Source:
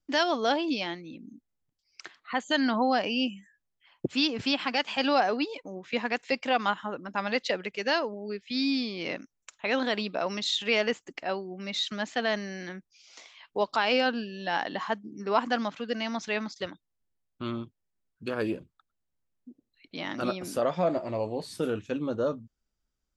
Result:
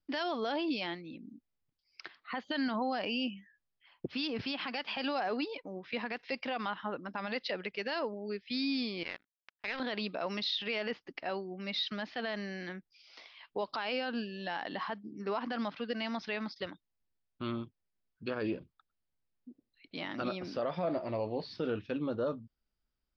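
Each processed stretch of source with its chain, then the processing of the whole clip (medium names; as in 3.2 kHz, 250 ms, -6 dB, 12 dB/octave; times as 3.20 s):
9.03–9.80 s: high-pass 57 Hz + peaking EQ 1.7 kHz +14.5 dB 1.7 oct + power-law waveshaper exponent 2
whole clip: elliptic low-pass 5.1 kHz, stop band 40 dB; peak limiter -22.5 dBFS; trim -2 dB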